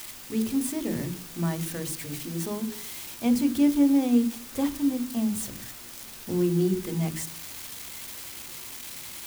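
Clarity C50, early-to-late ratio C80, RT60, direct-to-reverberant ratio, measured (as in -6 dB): 15.0 dB, 17.5 dB, 0.50 s, 9.0 dB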